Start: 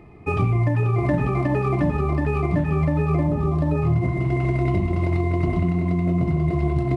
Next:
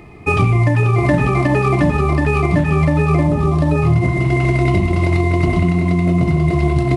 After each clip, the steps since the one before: high shelf 2200 Hz +10.5 dB; gain +6 dB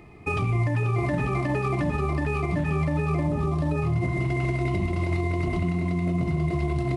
limiter -8.5 dBFS, peak gain reduction 5.5 dB; gain -8.5 dB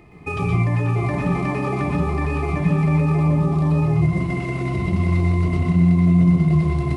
reverb RT60 0.25 s, pre-delay 0.118 s, DRR -0.5 dB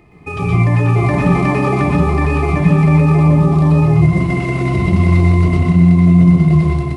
AGC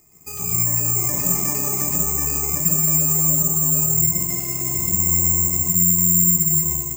careless resampling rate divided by 6×, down none, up zero stuff; gain -15.5 dB

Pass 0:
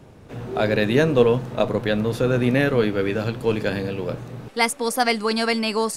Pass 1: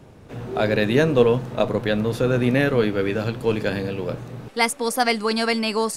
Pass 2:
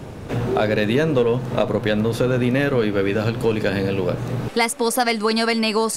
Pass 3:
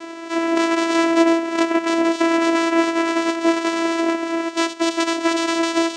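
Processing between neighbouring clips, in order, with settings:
nothing audible
in parallel at -6 dB: overloaded stage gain 13.5 dB; on the sum: compressor 3:1, threshold -28 dBFS, peak gain reduction 14.5 dB; gain +8.5 dB
spectral limiter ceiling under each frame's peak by 25 dB; reverb, pre-delay 3 ms, DRR 10.5 dB; vocoder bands 4, saw 332 Hz; gain +2 dB

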